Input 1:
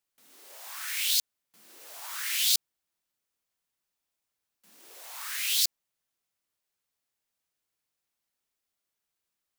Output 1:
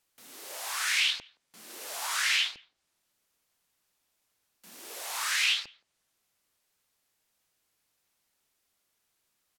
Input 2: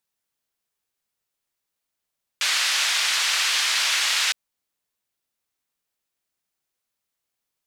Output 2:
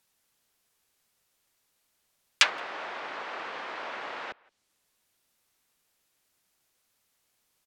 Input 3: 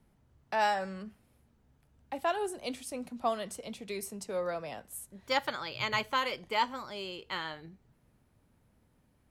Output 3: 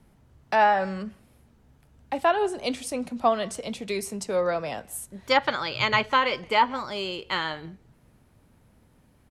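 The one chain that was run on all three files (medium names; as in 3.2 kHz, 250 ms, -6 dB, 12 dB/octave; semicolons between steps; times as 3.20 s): low-pass that closes with the level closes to 490 Hz, closed at -19 dBFS; speakerphone echo 170 ms, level -25 dB; trim +9 dB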